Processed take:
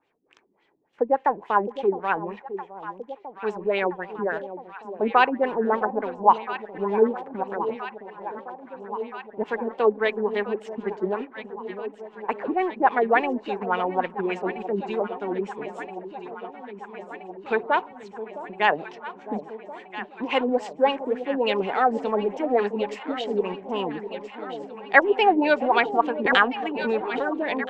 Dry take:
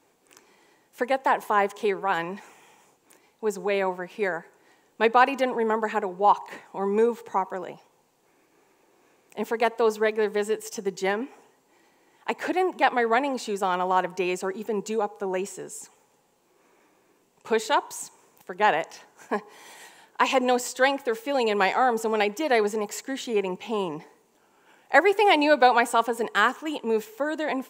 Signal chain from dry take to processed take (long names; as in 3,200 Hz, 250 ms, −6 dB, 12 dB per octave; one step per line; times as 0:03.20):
mu-law and A-law mismatch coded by A
auto-filter low-pass sine 3.5 Hz 250–3,400 Hz
on a send: delay that swaps between a low-pass and a high-pass 662 ms, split 820 Hz, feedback 83%, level −11 dB
0:26.25–0:27.25: on the sum: background raised ahead of every attack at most 41 dB per second
level −1 dB